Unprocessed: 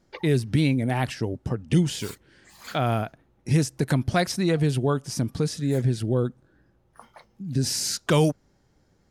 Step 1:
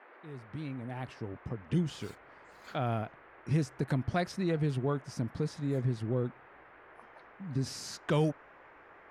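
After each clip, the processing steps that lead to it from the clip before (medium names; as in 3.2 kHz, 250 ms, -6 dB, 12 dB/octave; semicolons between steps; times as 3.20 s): fade-in on the opening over 2.06 s; band noise 310–2000 Hz -47 dBFS; low-pass 2.6 kHz 6 dB/octave; trim -8 dB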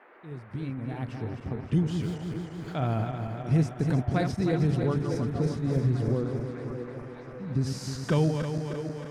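backward echo that repeats 156 ms, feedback 77%, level -6.5 dB; bass shelf 280 Hz +7 dB; repeats whose band climbs or falls 597 ms, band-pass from 400 Hz, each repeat 0.7 oct, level -7 dB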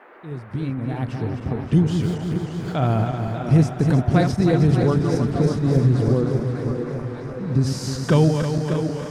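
peaking EQ 2.2 kHz -2.5 dB; modulated delay 591 ms, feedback 46%, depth 115 cents, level -11 dB; trim +8 dB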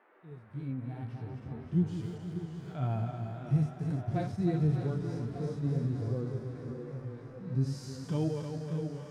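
harmonic-percussive split percussive -16 dB; flange 0.48 Hz, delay 8.6 ms, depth 9.4 ms, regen +42%; trim -8.5 dB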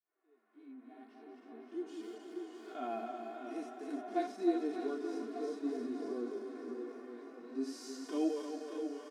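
fade-in on the opening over 2.61 s; brick-wall FIR high-pass 210 Hz; comb 2.8 ms, depth 98%; trim -3 dB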